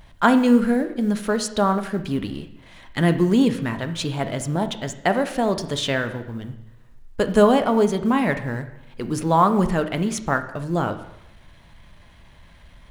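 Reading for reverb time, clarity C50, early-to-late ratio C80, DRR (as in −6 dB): 0.85 s, 11.5 dB, 14.0 dB, 8.0 dB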